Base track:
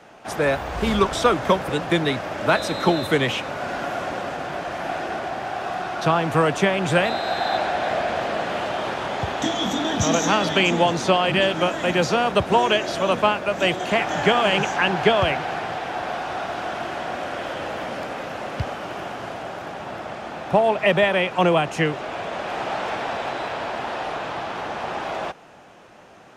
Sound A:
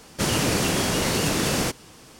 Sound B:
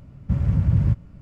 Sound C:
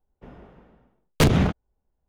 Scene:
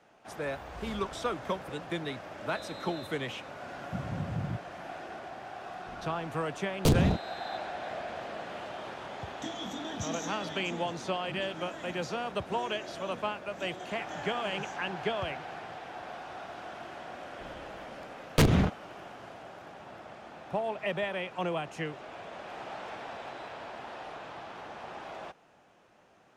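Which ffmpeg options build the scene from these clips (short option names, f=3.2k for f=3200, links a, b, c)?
-filter_complex "[3:a]asplit=2[a][b];[0:a]volume=-14.5dB[c];[2:a]highpass=190[d];[a]equalizer=f=1.7k:w=1.5:g=-15[e];[d]atrim=end=1.21,asetpts=PTS-STARTPTS,volume=-7dB,afade=t=in:d=0.004:c=hsin,afade=t=out:st=1.206:d=0.004:c=hsin,adelay=3630[f];[e]atrim=end=2.08,asetpts=PTS-STARTPTS,volume=-5dB,afade=t=in:d=0.004:c=hsin,afade=t=out:st=2.076:d=0.004:c=hsin,adelay=249165S[g];[b]atrim=end=2.08,asetpts=PTS-STARTPTS,volume=-4.5dB,afade=t=in:d=0.004:c=hsin,afade=t=out:st=2.076:d=0.004:c=hsin,adelay=17180[h];[c][f][g][h]amix=inputs=4:normalize=0"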